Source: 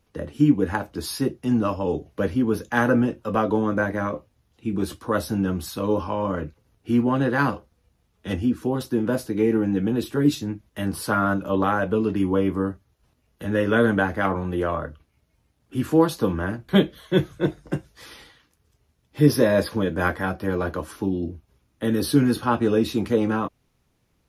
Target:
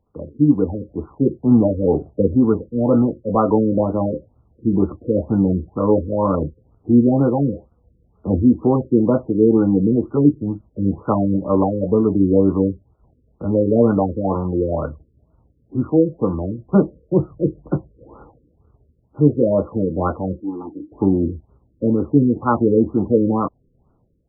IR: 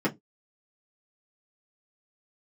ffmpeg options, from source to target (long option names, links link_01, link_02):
-filter_complex "[0:a]dynaudnorm=framelen=150:gausssize=5:maxgain=11.5dB,asettb=1/sr,asplit=3[link_01][link_02][link_03];[link_01]atrim=end=20.404[link_04];[link_02]atrim=start=20.4:end=20.92,asetpts=PTS-STARTPTS,afade=type=in:duration=0.004:curve=qsin,afade=type=out:start_time=0.516:duration=0.004:curve=qsin,asplit=3[link_05][link_06][link_07];[link_05]bandpass=frequency=300:width_type=q:width=8,volume=0dB[link_08];[link_06]bandpass=frequency=870:width_type=q:width=8,volume=-6dB[link_09];[link_07]bandpass=frequency=2240:width_type=q:width=8,volume=-9dB[link_10];[link_08][link_09][link_10]amix=inputs=3:normalize=0[link_11];[link_03]atrim=start=20.916[link_12];[link_04][link_11]acrossfade=duration=0.004:curve1=hsin:curve2=qsin[link_13];[link_13][link_12]acrossfade=duration=0.004:curve1=qsin:curve2=hsin,afftfilt=real='re*lt(b*sr/1024,530*pow(1500/530,0.5+0.5*sin(2*PI*2.1*pts/sr)))':imag='im*lt(b*sr/1024,530*pow(1500/530,0.5+0.5*sin(2*PI*2.1*pts/sr)))':win_size=1024:overlap=0.75,volume=-1dB"